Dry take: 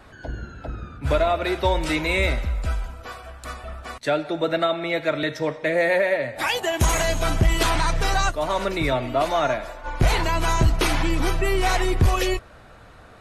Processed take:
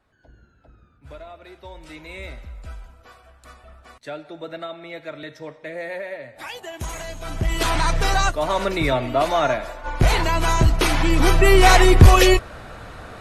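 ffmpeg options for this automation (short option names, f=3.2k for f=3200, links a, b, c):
-af "volume=9dB,afade=t=in:st=1.66:d=1.11:silence=0.375837,afade=t=in:st=7.23:d=0.64:silence=0.223872,afade=t=in:st=10.97:d=0.58:silence=0.446684"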